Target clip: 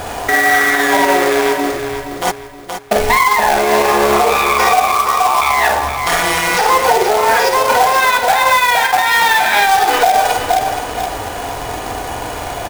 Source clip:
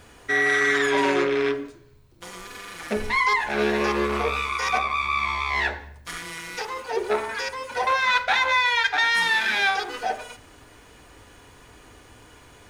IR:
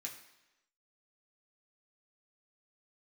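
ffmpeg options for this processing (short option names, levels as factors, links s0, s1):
-filter_complex "[0:a]acompressor=threshold=0.0224:ratio=16,equalizer=f=730:t=o:w=0.78:g=15,asplit=2[s0][s1];[s1]adelay=49,volume=0.473[s2];[s0][s2]amix=inputs=2:normalize=0,asplit=3[s3][s4][s5];[s3]afade=t=out:st=2.3:d=0.02[s6];[s4]agate=range=0.0178:threshold=0.0447:ratio=16:detection=peak,afade=t=in:st=2.3:d=0.02,afade=t=out:st=2.94:d=0.02[s7];[s5]afade=t=in:st=2.94:d=0.02[s8];[s6][s7][s8]amix=inputs=3:normalize=0,asettb=1/sr,asplit=3[s9][s10][s11];[s9]atrim=end=4.954[s12];[s10]atrim=start=4.95:end=5.42,asetpts=PTS-STARTPTS,afade=t=in:d=0.004:c=qsin,afade=t=out:st=0.466:d=0.004:c=qsin,asuperpass=centerf=660:order=12:qfactor=0.54[s13];[s11]atrim=start=5.416[s14];[s12][s13]acrossfade=d=0.004:c1=hsin:c2=qsin[s15];[s15][s14]acrossfade=d=0.004:c1=qsin:c2=hsin,acrusher=bits=2:mode=log:mix=0:aa=0.000001,aecho=1:1:471|942|1413|1884:0.355|0.117|0.0386|0.0128,alimiter=level_in=11.9:limit=0.891:release=50:level=0:latency=1,volume=0.794"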